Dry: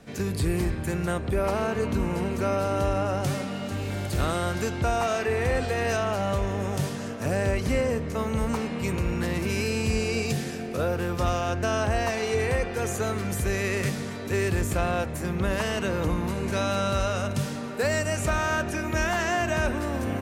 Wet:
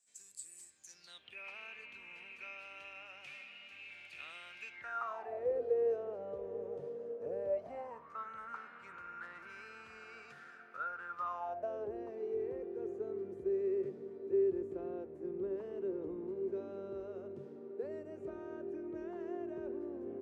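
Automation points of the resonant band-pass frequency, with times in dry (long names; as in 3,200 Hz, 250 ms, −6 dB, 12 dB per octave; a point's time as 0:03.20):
resonant band-pass, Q 11
0:00.74 7,800 Hz
0:01.38 2,500 Hz
0:04.68 2,500 Hz
0:05.51 470 Hz
0:07.37 470 Hz
0:08.25 1,400 Hz
0:11.13 1,400 Hz
0:11.94 380 Hz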